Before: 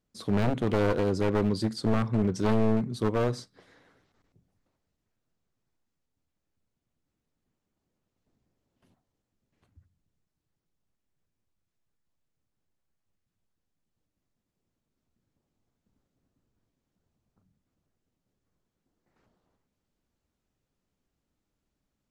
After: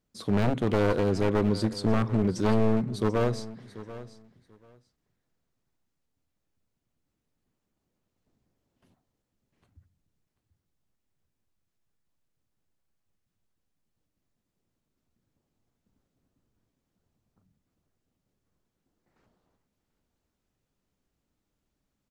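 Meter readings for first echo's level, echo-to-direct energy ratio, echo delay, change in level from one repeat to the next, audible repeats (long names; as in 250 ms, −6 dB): −16.0 dB, −16.0 dB, 738 ms, −15.5 dB, 2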